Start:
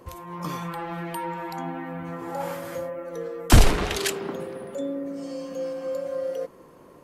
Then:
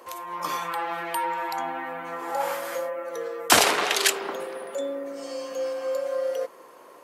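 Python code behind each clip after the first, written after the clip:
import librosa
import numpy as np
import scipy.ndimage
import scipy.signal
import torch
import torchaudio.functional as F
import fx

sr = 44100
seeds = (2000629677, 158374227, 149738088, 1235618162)

y = scipy.signal.sosfilt(scipy.signal.butter(2, 590.0, 'highpass', fs=sr, output='sos'), x)
y = y * librosa.db_to_amplitude(6.0)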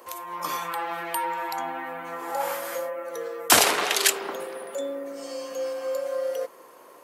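y = fx.high_shelf(x, sr, hz=9500.0, db=8.0)
y = y * librosa.db_to_amplitude(-1.0)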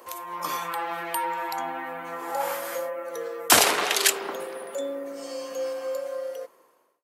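y = fx.fade_out_tail(x, sr, length_s=1.33)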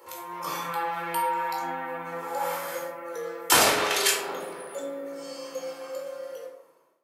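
y = fx.room_shoebox(x, sr, seeds[0], volume_m3=840.0, walls='furnished', distance_m=4.3)
y = y * librosa.db_to_amplitude(-6.5)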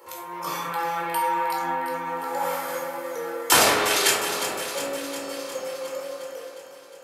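y = fx.echo_alternate(x, sr, ms=179, hz=1900.0, feedback_pct=81, wet_db=-7.5)
y = y * librosa.db_to_amplitude(2.0)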